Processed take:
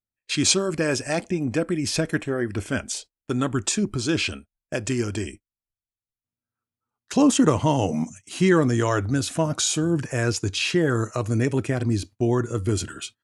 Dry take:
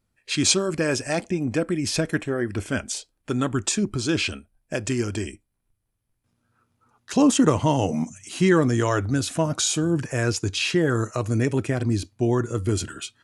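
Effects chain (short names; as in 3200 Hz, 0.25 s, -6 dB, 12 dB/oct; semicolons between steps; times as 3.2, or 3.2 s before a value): gate -40 dBFS, range -23 dB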